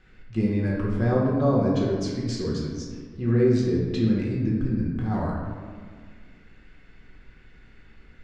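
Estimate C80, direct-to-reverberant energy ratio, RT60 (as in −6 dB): 3.0 dB, −4.0 dB, 1.8 s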